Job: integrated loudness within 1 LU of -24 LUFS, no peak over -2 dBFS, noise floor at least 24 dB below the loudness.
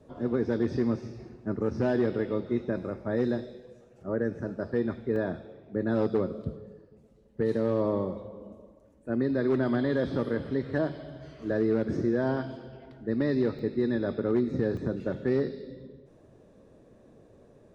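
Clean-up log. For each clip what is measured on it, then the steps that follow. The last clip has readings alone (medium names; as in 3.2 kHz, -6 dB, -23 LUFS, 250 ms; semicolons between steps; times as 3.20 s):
dropouts 3; longest dropout 1.7 ms; loudness -29.5 LUFS; peak level -17.0 dBFS; loudness target -24.0 LUFS
-> interpolate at 5.16/13.59/14.77 s, 1.7 ms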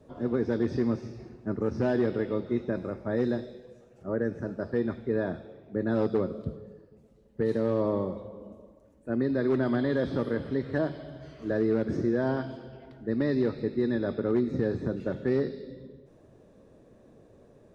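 dropouts 0; loudness -29.5 LUFS; peak level -17.0 dBFS; loudness target -24.0 LUFS
-> trim +5.5 dB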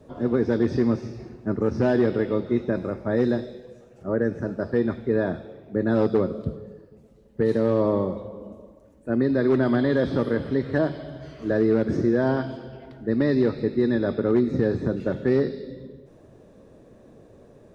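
loudness -24.0 LUFS; peak level -11.5 dBFS; noise floor -52 dBFS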